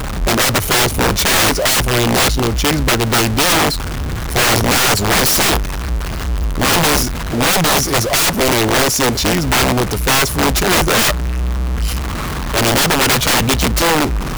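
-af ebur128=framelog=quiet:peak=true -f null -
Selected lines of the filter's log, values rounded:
Integrated loudness:
  I:         -13.9 LUFS
  Threshold: -23.8 LUFS
Loudness range:
  LRA:         1.6 LU
  Threshold: -33.9 LUFS
  LRA low:   -14.8 LUFS
  LRA high:  -13.2 LUFS
True peak:
  Peak:       -4.0 dBFS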